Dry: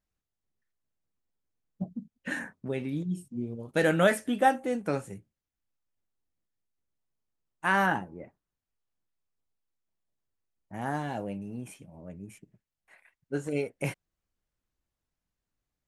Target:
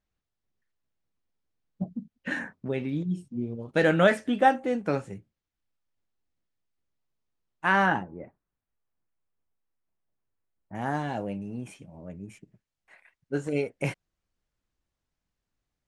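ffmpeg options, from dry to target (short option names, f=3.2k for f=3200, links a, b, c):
-af "asetnsamples=n=441:p=0,asendcmd='8.03 lowpass f 2100;10.75 lowpass f 7400',lowpass=5.3k,volume=2.5dB"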